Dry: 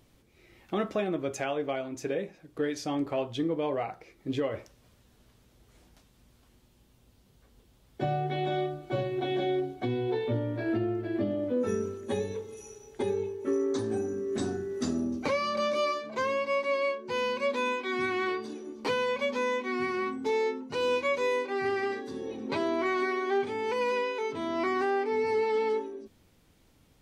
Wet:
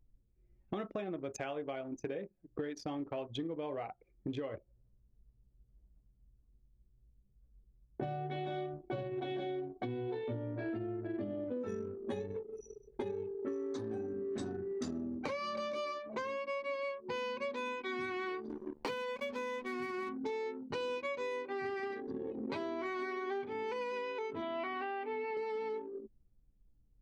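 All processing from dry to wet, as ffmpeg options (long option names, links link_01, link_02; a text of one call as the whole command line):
ffmpeg -i in.wav -filter_complex "[0:a]asettb=1/sr,asplit=3[link_01][link_02][link_03];[link_01]atrim=end=4.584[link_04];[link_02]atrim=start=4.58:end=8.03,asetpts=PTS-STARTPTS,afade=type=in:duration=0.004:curve=qsin,afade=type=out:start_time=3.446:duration=0.004:curve=qsin,lowpass=frequency=1300:poles=1,aecho=1:1:93|186|279|372|465|558:0.266|0.146|0.0805|0.0443|0.0243|0.0134,atrim=end_sample=152145[link_05];[link_03]atrim=start=8.026[link_06];[link_04][link_05]acrossfade=duration=0.004:curve1=hsin:curve2=qsin[link_07];[link_07][link_06]acrossfade=duration=0.004:curve1=qsin:curve2=hsin,asettb=1/sr,asplit=3[link_08][link_09][link_10];[link_08]atrim=end=18.494[link_11];[link_09]atrim=start=18.49:end=20.09,asetpts=PTS-STARTPTS,afade=type=in:duration=0.004:curve=qsin,afade=type=out:start_time=1.596:duration=0.004:curve=qsin,highpass=frequency=96:width=0.5412,highpass=frequency=96:width=1.3066,aeval=exprs='val(0)*gte(abs(val(0)),0.00891)':channel_layout=same[link_12];[link_10]atrim=start=20.086[link_13];[link_11][link_12]acrossfade=duration=0.004:curve1=hsin:curve2=qsin[link_14];[link_14][link_13]acrossfade=duration=0.004:curve1=qsin:curve2=hsin,asettb=1/sr,asplit=3[link_15][link_16][link_17];[link_15]atrim=end=24.424[link_18];[link_16]atrim=start=24.42:end=25.37,asetpts=PTS-STARTPTS,afade=type=in:duration=0.004:curve=qsin,afade=type=out:start_time=0.946:duration=0.004:curve=qsin,acrusher=bits=9:mode=log:mix=0:aa=0.000001,highpass=130,equalizer=frequency=180:width_type=q:width=4:gain=-9,equalizer=frequency=360:width_type=q:width=4:gain=-7,equalizer=frequency=680:width_type=q:width=4:gain=4,equalizer=frequency=2800:width_type=q:width=4:gain=8,lowpass=frequency=3800:width=0.5412,lowpass=frequency=3800:width=1.3066[link_19];[link_17]atrim=start=25.366[link_20];[link_18][link_19]acrossfade=duration=0.004:curve1=hsin:curve2=qsin[link_21];[link_21][link_20]acrossfade=duration=0.004:curve1=qsin:curve2=hsin,anlmdn=1.58,acompressor=threshold=-43dB:ratio=6,volume=5.5dB" out.wav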